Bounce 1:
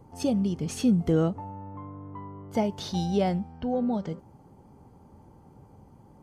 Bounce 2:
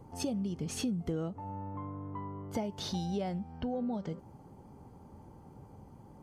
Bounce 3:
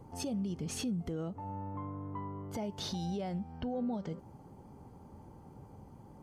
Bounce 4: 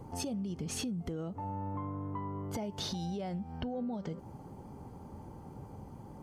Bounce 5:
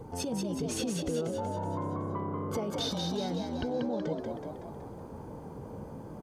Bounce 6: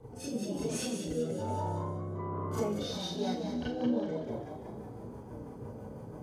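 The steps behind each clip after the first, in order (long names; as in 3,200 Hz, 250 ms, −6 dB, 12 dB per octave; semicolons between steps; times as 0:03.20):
downward compressor 4 to 1, threshold −33 dBFS, peak gain reduction 12.5 dB
brickwall limiter −28.5 dBFS, peak gain reduction 7 dB
downward compressor, threshold −39 dBFS, peak gain reduction 7.5 dB; level +5 dB
hollow resonant body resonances 460/1,500/3,600 Hz, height 11 dB, ringing for 60 ms; on a send: echo with shifted repeats 187 ms, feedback 55%, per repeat +66 Hz, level −4 dB; on the sum: level +1.5 dB
rotating-speaker cabinet horn 1.1 Hz, later 6 Hz, at 0:02.57; convolution reverb RT60 0.45 s, pre-delay 29 ms, DRR −8.5 dB; level −8.5 dB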